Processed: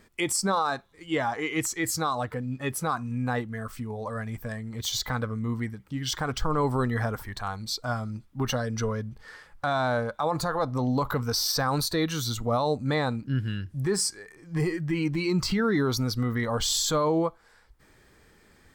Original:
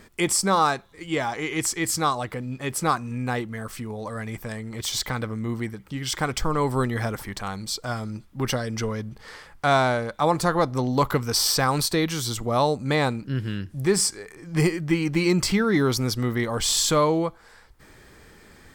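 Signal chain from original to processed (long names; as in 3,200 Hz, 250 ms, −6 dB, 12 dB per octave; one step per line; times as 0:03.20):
brickwall limiter −16.5 dBFS, peak gain reduction 8 dB
noise reduction from a noise print of the clip's start 8 dB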